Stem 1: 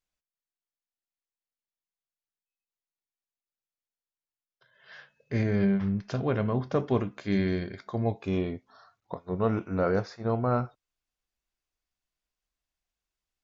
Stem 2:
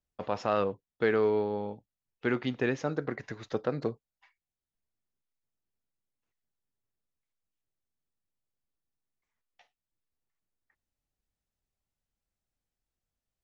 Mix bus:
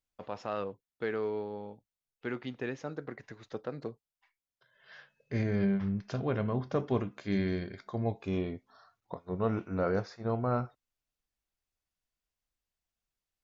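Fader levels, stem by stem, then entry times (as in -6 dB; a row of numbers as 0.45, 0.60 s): -4.0, -7.5 dB; 0.00, 0.00 s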